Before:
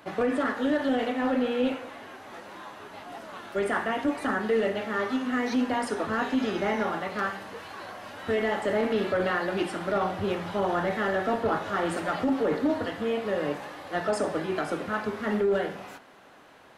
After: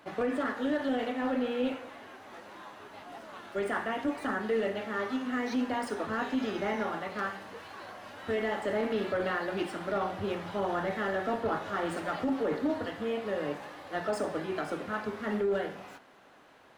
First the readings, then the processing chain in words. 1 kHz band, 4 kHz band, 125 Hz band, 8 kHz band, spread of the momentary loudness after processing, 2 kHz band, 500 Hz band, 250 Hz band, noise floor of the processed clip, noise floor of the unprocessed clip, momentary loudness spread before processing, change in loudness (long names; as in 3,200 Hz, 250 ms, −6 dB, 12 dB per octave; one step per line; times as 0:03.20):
−4.5 dB, −4.5 dB, −5.0 dB, −6.0 dB, 15 LU, −4.5 dB, −4.5 dB, −4.5 dB, −55 dBFS, −51 dBFS, 15 LU, −4.5 dB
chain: running median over 3 samples
mains-hum notches 60/120/180 Hz
level −4.5 dB